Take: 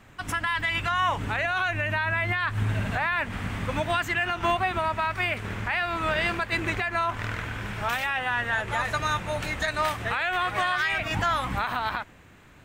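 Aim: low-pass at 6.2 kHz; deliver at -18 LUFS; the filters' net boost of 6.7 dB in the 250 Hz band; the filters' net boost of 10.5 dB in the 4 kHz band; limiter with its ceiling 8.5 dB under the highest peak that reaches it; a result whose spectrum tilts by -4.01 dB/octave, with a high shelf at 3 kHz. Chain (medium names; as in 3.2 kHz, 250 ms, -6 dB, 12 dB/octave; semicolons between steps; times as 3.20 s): low-pass 6.2 kHz; peaking EQ 250 Hz +9 dB; treble shelf 3 kHz +8.5 dB; peaking EQ 4 kHz +8 dB; trim +7 dB; peak limiter -8.5 dBFS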